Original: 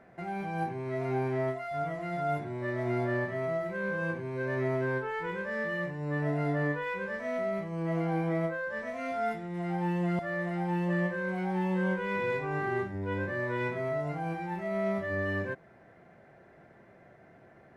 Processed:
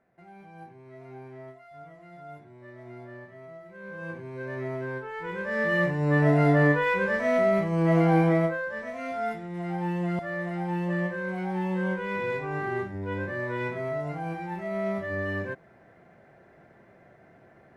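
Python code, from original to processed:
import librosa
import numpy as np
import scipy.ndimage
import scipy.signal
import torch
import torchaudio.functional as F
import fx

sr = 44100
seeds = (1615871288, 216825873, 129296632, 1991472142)

y = fx.gain(x, sr, db=fx.line((3.64, -13.5), (4.15, -3.0), (5.1, -3.0), (5.78, 9.5), (8.22, 9.5), (8.76, 1.0)))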